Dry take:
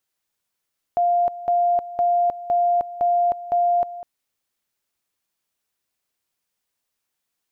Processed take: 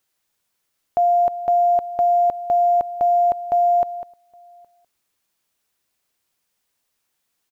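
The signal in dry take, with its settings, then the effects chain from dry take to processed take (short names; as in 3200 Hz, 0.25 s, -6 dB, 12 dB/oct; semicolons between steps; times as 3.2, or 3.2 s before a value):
two-level tone 700 Hz -15.5 dBFS, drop 15.5 dB, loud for 0.31 s, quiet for 0.20 s, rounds 6
in parallel at -1 dB: limiter -23.5 dBFS; on the sum: short-mantissa float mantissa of 6-bit; outdoor echo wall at 140 m, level -30 dB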